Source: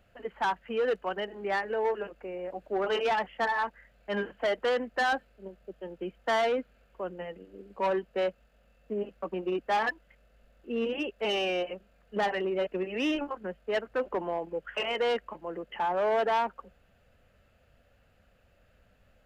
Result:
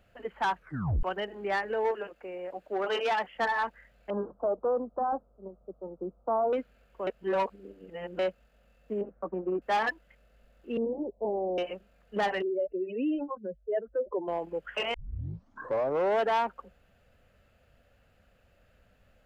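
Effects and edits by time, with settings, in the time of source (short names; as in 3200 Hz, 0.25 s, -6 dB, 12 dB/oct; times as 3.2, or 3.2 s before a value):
0.56 tape stop 0.47 s
1.91–3.36 low shelf 190 Hz -10.5 dB
4.1–6.53 elliptic low-pass 1200 Hz
7.07–8.19 reverse
9.01–9.62 LPF 1400 Hz 24 dB/oct
10.77–11.58 steep low-pass 970 Hz 72 dB/oct
12.42–14.28 spectral contrast raised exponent 2.4
14.94 tape start 1.24 s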